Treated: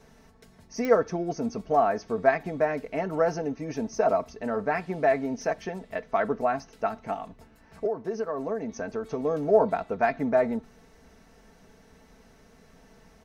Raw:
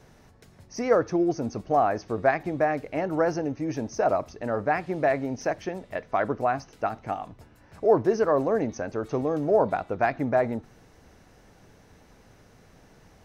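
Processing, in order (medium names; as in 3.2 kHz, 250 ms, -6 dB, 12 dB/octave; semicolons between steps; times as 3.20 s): comb 4.5 ms, depth 62%; 7.86–9.25 s: compression 6:1, threshold -25 dBFS, peak gain reduction 14 dB; clicks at 0.85 s, -16 dBFS; trim -2 dB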